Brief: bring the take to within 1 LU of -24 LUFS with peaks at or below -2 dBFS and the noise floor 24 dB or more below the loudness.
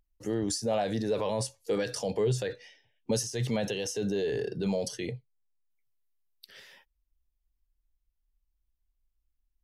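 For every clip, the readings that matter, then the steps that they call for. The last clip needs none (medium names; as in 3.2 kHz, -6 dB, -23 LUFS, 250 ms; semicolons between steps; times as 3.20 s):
loudness -31.5 LUFS; peak level -18.5 dBFS; loudness target -24.0 LUFS
-> trim +7.5 dB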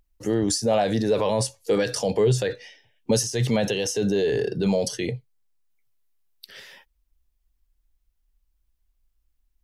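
loudness -24.0 LUFS; peak level -11.0 dBFS; noise floor -73 dBFS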